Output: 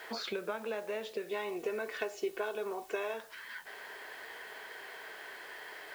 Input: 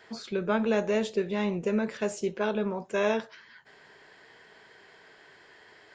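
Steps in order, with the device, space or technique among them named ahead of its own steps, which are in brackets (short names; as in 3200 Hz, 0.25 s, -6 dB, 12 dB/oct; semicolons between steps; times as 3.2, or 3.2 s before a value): baby monitor (BPF 470–4000 Hz; compressor 10:1, threshold -43 dBFS, peak gain reduction 19.5 dB; white noise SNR 20 dB); 1.29–3.14 comb 2.7 ms, depth 58%; gain +8.5 dB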